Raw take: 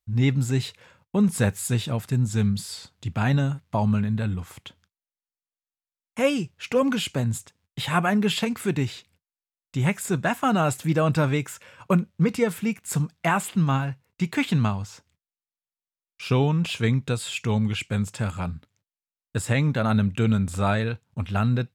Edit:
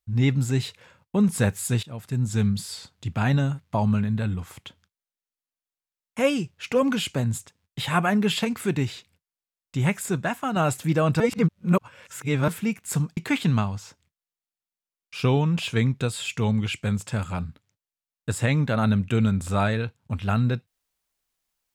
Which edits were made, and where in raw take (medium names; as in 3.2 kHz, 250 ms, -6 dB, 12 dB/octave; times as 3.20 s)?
1.83–2.32 s: fade in, from -18 dB
10.01–10.56 s: fade out, to -7 dB
11.20–12.48 s: reverse
13.17–14.24 s: delete